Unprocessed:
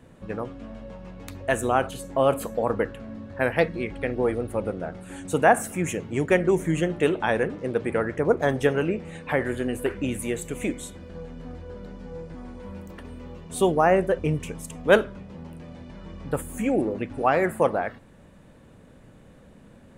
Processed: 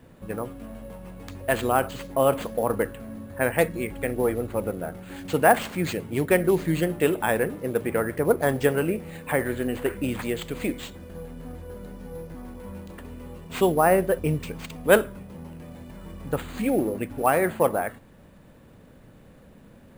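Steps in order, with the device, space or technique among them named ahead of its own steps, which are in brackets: early companding sampler (sample-rate reducer 11000 Hz, jitter 0%; companded quantiser 8-bit)

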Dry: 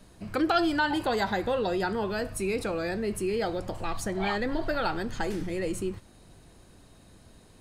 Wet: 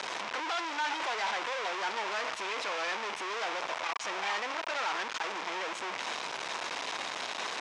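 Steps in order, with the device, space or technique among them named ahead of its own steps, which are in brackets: home computer beeper (infinite clipping; speaker cabinet 760–5600 Hz, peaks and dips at 980 Hz +5 dB, 2300 Hz +3 dB, 4400 Hz -5 dB)

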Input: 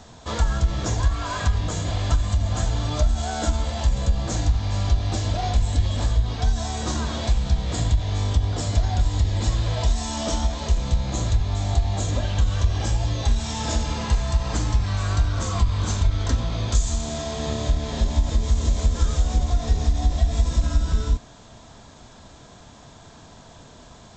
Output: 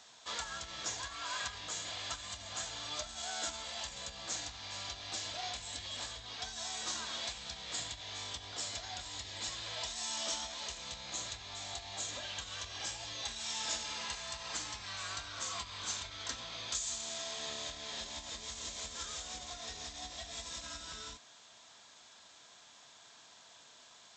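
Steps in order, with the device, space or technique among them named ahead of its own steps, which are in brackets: filter by subtraction (in parallel: LPF 2900 Hz 12 dB/oct + phase invert); on the sum: gain -6.5 dB

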